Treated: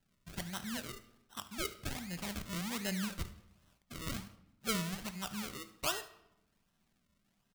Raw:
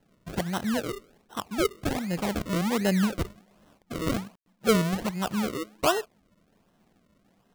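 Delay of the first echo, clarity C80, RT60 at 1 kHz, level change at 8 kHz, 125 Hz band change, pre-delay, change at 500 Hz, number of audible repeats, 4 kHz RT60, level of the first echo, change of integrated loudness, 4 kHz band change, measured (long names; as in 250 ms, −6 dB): 73 ms, 17.0 dB, 0.85 s, −4.5 dB, −12.0 dB, 3 ms, −18.0 dB, 1, 0.60 s, −18.0 dB, −11.5 dB, −6.0 dB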